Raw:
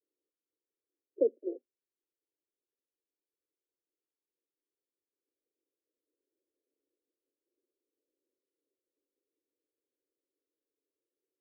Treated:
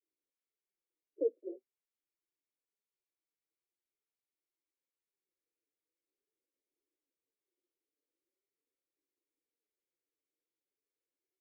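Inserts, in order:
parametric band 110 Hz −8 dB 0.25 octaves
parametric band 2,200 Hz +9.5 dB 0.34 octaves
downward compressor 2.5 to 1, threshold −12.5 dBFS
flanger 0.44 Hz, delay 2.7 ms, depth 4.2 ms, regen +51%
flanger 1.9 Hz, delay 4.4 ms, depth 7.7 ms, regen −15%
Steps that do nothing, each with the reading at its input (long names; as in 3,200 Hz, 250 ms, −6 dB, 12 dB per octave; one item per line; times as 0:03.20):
parametric band 110 Hz: nothing at its input below 230 Hz
parametric band 2,200 Hz: nothing at its input above 600 Hz
downward compressor, threshold −12.5 dBFS: peak of its input −16.0 dBFS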